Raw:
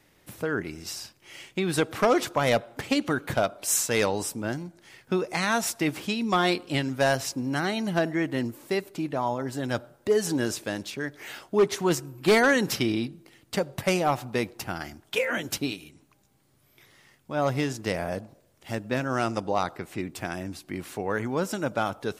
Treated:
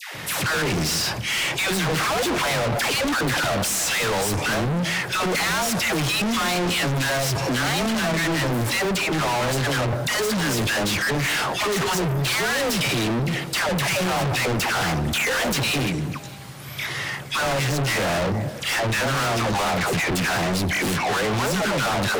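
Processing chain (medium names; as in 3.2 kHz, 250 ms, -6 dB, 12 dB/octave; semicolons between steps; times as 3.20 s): resonant low shelf 200 Hz +10.5 dB, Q 1.5; in parallel at +2.5 dB: peak limiter -17.5 dBFS, peak gain reduction 9.5 dB; on the sum: phase dispersion lows, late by 148 ms, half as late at 740 Hz; overdrive pedal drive 38 dB, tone 3.7 kHz, clips at -1.5 dBFS; overload inside the chain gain 15 dB; on a send: repeats whose band climbs or falls 153 ms, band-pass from 230 Hz, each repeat 1.4 oct, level -11.5 dB; on the sum: trim -7 dB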